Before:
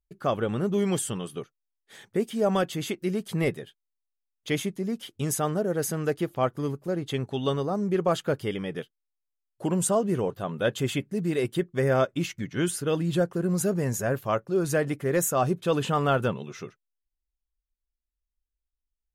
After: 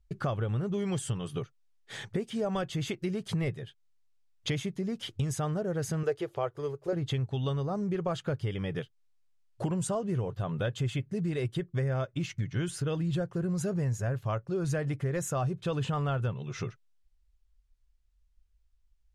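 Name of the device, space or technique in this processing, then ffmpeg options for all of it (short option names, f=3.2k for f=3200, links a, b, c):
jukebox: -filter_complex "[0:a]lowpass=7.3k,lowshelf=f=160:t=q:w=1.5:g=10,acompressor=threshold=-39dB:ratio=4,asettb=1/sr,asplit=3[a][b][c];[a]atrim=end=6.034[d];[b]atrim=start=6.03:end=6.93,asetpts=PTS-STARTPTS,afade=t=in:d=0.004:c=qsin,afade=t=out:st=0.896:d=0.004:c=qsin,lowshelf=f=310:t=q:w=3:g=-9[e];[c]atrim=start=6.926[f];[d][e]acrossfade=d=0.004:c1=hsin:c2=qsin[g];[g][f]acrossfade=d=0.004:c1=qsin:c2=hsin,volume=7.5dB"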